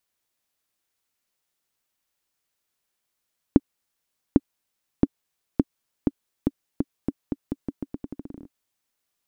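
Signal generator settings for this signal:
bouncing ball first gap 0.80 s, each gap 0.84, 279 Hz, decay 38 ms −1.5 dBFS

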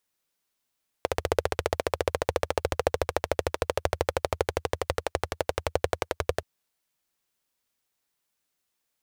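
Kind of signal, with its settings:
pulse-train model of a single-cylinder engine, changing speed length 5.38 s, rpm 1,800, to 1,300, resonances 82/490 Hz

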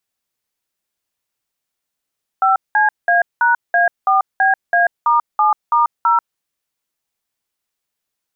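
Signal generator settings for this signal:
touch tones "5CA#A4BA*7*0", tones 139 ms, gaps 191 ms, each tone −13 dBFS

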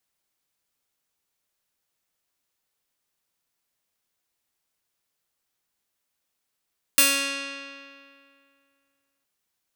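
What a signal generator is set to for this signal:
Karplus-Strong string C#4, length 2.26 s, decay 2.34 s, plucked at 0.36, bright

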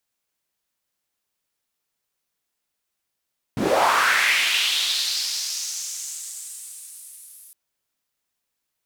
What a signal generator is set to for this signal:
filter sweep on noise white, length 3.96 s bandpass, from 110 Hz, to 11,000 Hz, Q 3, linear, gain ramp −39.5 dB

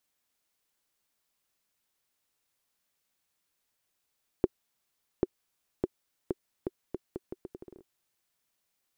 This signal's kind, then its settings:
bouncing ball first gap 0.79 s, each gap 0.77, 370 Hz, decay 33 ms −10.5 dBFS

